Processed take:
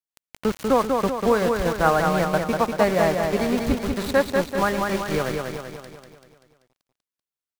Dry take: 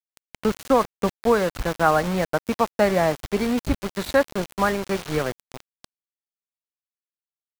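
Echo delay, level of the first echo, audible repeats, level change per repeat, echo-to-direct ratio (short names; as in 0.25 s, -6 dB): 0.193 s, -4.0 dB, 6, -5.5 dB, -2.5 dB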